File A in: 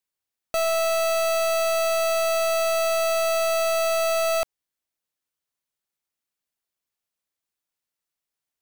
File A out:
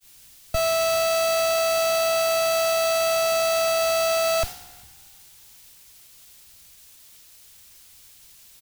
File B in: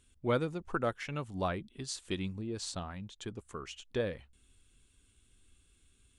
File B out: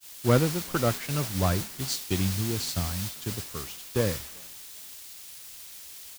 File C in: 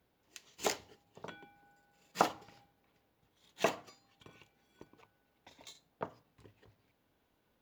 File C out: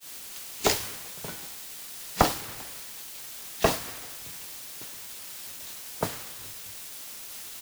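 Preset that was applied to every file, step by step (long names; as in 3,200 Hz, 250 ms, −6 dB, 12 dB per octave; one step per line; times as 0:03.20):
one-sided soft clipper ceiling −24.5 dBFS
parametric band 88 Hz +9.5 dB 2.6 octaves
in parallel at 0 dB: downward compressor, threshold −36 dBFS
on the sum: echo with shifted repeats 393 ms, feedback 54%, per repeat +62 Hz, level −21 dB
bit-depth reduction 6 bits, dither triangular
downward expander −30 dBFS
dynamic equaliser 4,600 Hz, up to +4 dB, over −44 dBFS, Q 1.6
multiband upward and downward expander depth 70%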